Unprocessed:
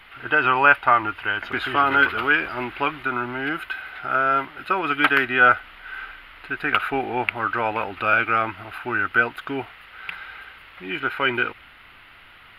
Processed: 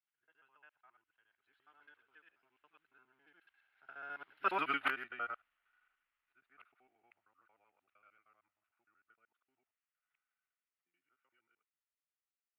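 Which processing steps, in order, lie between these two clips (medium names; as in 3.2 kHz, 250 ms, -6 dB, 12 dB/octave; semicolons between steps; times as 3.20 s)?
time reversed locally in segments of 73 ms; Doppler pass-by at 4.58 s, 17 m/s, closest 1.9 m; bass shelf 320 Hz -10 dB; upward expansion 1.5:1, over -52 dBFS; trim -6 dB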